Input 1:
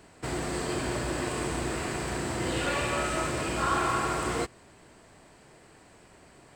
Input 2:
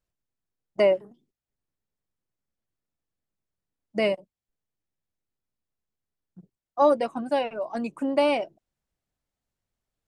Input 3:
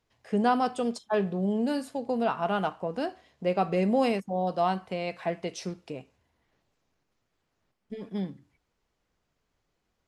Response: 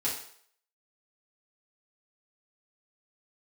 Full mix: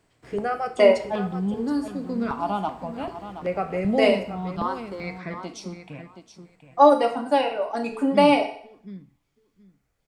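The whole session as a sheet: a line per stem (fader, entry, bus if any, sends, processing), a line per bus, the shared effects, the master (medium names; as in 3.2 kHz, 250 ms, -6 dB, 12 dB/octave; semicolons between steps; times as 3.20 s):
-12.5 dB, 0.00 s, no send, echo send -3.5 dB, slew-rate limiter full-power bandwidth 21 Hz; auto duck -14 dB, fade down 1.30 s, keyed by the third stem
0.0 dB, 0.00 s, send -4 dB, no echo send, bass shelf 200 Hz -11 dB
+2.0 dB, 0.00 s, send -12.5 dB, echo send -9.5 dB, treble shelf 6.4 kHz -7.5 dB; comb 0.9 ms, depth 33%; stepped phaser 2.6 Hz 220–3000 Hz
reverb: on, RT60 0.60 s, pre-delay 4 ms
echo: feedback delay 724 ms, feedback 16%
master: none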